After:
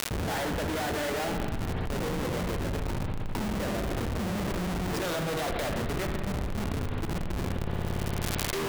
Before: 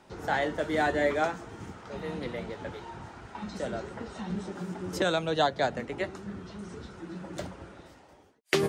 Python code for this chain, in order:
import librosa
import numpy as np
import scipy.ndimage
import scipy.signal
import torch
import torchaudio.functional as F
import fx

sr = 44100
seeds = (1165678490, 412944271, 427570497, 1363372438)

y = fx.spec_erase(x, sr, start_s=6.9, length_s=0.6, low_hz=460.0, high_hz=5400.0)
y = fx.dynamic_eq(y, sr, hz=1100.0, q=0.9, threshold_db=-40.0, ratio=4.0, max_db=-3)
y = fx.schmitt(y, sr, flips_db=-37.0)
y = fx.dmg_crackle(y, sr, seeds[0], per_s=150.0, level_db=-50.0)
y = fx.rev_spring(y, sr, rt60_s=1.5, pass_ms=(57,), chirp_ms=45, drr_db=5.0)
y = fx.env_flatten(y, sr, amount_pct=100)